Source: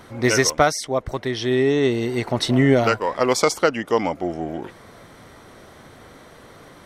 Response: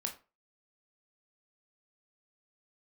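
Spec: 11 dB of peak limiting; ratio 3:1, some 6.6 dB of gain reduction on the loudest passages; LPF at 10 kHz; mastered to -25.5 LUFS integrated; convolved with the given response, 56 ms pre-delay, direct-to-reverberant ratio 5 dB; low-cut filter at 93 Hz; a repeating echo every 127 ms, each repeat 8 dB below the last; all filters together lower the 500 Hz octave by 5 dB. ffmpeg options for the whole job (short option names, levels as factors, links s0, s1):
-filter_complex "[0:a]highpass=93,lowpass=10000,equalizer=f=500:t=o:g=-6.5,acompressor=threshold=0.0794:ratio=3,alimiter=limit=0.126:level=0:latency=1,aecho=1:1:127|254|381|508|635:0.398|0.159|0.0637|0.0255|0.0102,asplit=2[s0][s1];[1:a]atrim=start_sample=2205,adelay=56[s2];[s1][s2]afir=irnorm=-1:irlink=0,volume=0.531[s3];[s0][s3]amix=inputs=2:normalize=0,volume=1.26"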